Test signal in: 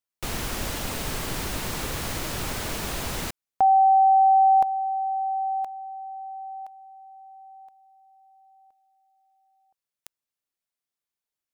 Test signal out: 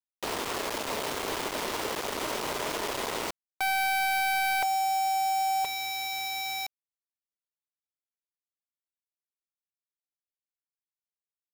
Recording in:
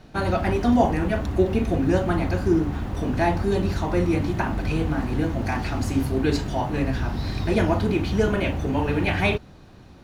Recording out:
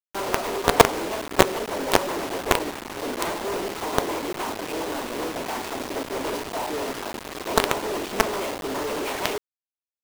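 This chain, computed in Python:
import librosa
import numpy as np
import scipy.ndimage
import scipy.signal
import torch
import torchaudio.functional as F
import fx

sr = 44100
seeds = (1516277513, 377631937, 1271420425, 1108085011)

y = fx.cheby_harmonics(x, sr, harmonics=(2, 3, 5, 7), levels_db=(-9, -14, -45, -18), full_scale_db=-4.0)
y = fx.cabinet(y, sr, low_hz=270.0, low_slope=24, high_hz=4600.0, hz=(420.0, 610.0, 990.0, 1700.0, 2500.0, 4200.0), db=(6, 4, 6, -5, -4, -8))
y = fx.quant_companded(y, sr, bits=2)
y = F.gain(torch.from_numpy(y), -1.0).numpy()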